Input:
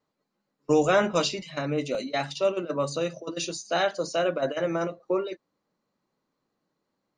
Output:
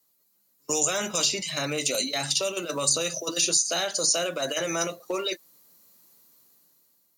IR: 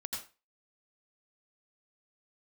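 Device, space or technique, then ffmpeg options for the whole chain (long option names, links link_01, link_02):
FM broadcast chain: -filter_complex "[0:a]highpass=49,dynaudnorm=framelen=270:gausssize=7:maxgain=11dB,acrossover=split=510|2400[link_01][link_02][link_03];[link_01]acompressor=threshold=-29dB:ratio=4[link_04];[link_02]acompressor=threshold=-26dB:ratio=4[link_05];[link_03]acompressor=threshold=-36dB:ratio=4[link_06];[link_04][link_05][link_06]amix=inputs=3:normalize=0,aemphasis=mode=production:type=75fm,alimiter=limit=-17dB:level=0:latency=1:release=35,asoftclip=type=hard:threshold=-18dB,lowpass=frequency=15000:width=0.5412,lowpass=frequency=15000:width=1.3066,aemphasis=mode=production:type=75fm,volume=-2.5dB"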